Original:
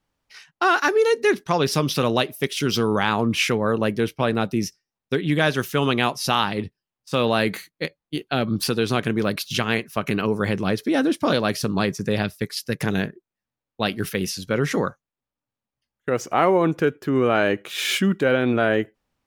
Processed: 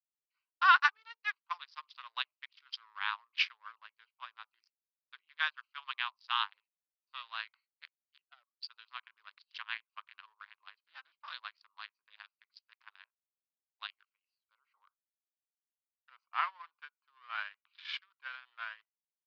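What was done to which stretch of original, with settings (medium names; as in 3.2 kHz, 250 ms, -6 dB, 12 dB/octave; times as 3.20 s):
8.25–8.70 s: spectral contrast enhancement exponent 1.8
14.05–16.35 s: fade in, from -17 dB
whole clip: local Wiener filter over 25 samples; Chebyshev band-pass 1–4.9 kHz, order 4; upward expansion 2.5:1, over -35 dBFS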